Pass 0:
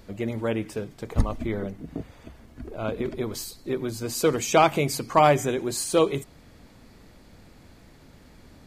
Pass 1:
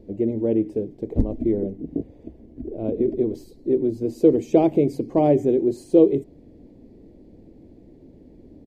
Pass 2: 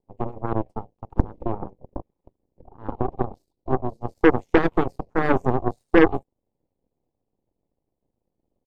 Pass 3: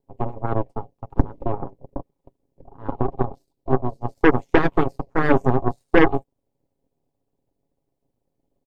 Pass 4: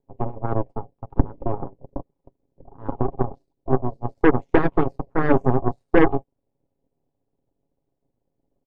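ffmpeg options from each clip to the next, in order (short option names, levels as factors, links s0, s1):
-af "firequalizer=gain_entry='entry(140,0);entry(320,11);entry(1300,-27);entry(1900,-16);entry(7900,-21)':delay=0.05:min_phase=1"
-af "aeval=exprs='0.631*(cos(1*acos(clip(val(0)/0.631,-1,1)))-cos(1*PI/2))+0.0447*(cos(3*acos(clip(val(0)/0.631,-1,1)))-cos(3*PI/2))+0.158*(cos(6*acos(clip(val(0)/0.631,-1,1)))-cos(6*PI/2))+0.0708*(cos(7*acos(clip(val(0)/0.631,-1,1)))-cos(7*PI/2))+0.0316*(cos(8*acos(clip(val(0)/0.631,-1,1)))-cos(8*PI/2))':c=same,equalizer=f=630:t=o:w=0.29:g=-6.5"
-af "aecho=1:1:7.3:0.42,volume=1.19"
-af "lowpass=f=1400:p=1"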